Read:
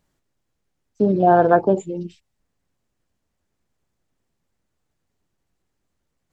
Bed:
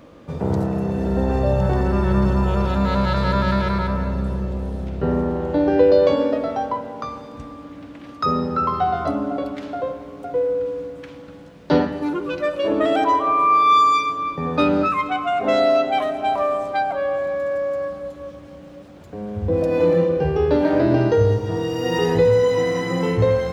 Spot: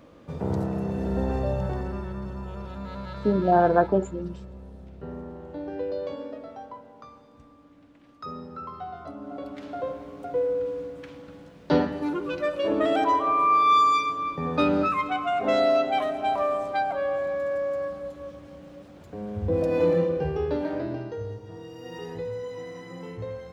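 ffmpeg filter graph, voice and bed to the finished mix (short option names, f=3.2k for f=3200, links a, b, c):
-filter_complex "[0:a]adelay=2250,volume=-5dB[a];[1:a]volume=6.5dB,afade=t=out:st=1.23:d=0.92:silence=0.281838,afade=t=in:st=9.16:d=0.8:silence=0.237137,afade=t=out:st=19.84:d=1.22:silence=0.211349[b];[a][b]amix=inputs=2:normalize=0"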